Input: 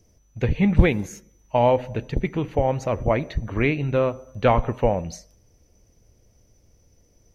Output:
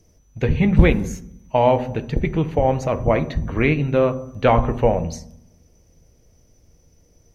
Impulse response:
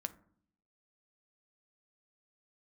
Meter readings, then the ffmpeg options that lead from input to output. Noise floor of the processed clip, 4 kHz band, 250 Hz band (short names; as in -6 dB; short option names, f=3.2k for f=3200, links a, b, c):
-57 dBFS, +2.5 dB, +3.5 dB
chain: -filter_complex "[1:a]atrim=start_sample=2205,asetrate=35280,aresample=44100[a];[0:a][a]afir=irnorm=-1:irlink=0,volume=3.5dB"